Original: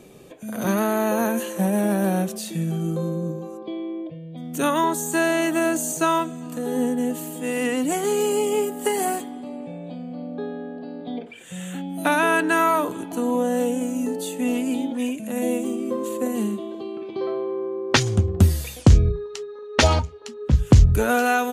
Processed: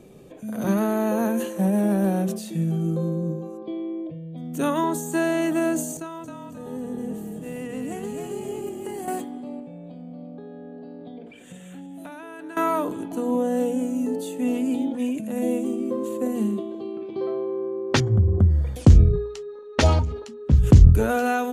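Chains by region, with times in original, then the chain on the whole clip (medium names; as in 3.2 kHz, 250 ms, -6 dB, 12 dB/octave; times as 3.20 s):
5.97–9.08 s: gate -26 dBFS, range -9 dB + compression, threshold -29 dBFS + frequency-shifting echo 266 ms, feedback 44%, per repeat -37 Hz, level -4 dB
9.59–12.57 s: compression 4:1, threshold -36 dBFS + delay 343 ms -13 dB
18.00–18.76 s: peaking EQ 84 Hz +6.5 dB 1.7 oct + compression 3:1, threshold -17 dBFS + Savitzky-Golay filter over 41 samples
whole clip: tilt shelf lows +4.5 dB, about 640 Hz; hum notches 60/120/180/240/300/360/420 Hz; decay stretcher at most 79 dB/s; trim -2.5 dB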